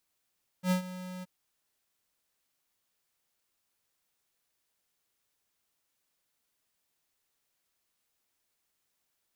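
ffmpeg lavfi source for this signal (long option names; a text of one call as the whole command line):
ffmpeg -f lavfi -i "aevalsrc='0.0562*(2*lt(mod(183*t,1),0.5)-1)':duration=0.625:sample_rate=44100,afade=type=in:duration=0.08,afade=type=out:start_time=0.08:duration=0.106:silence=0.158,afade=type=out:start_time=0.6:duration=0.025" out.wav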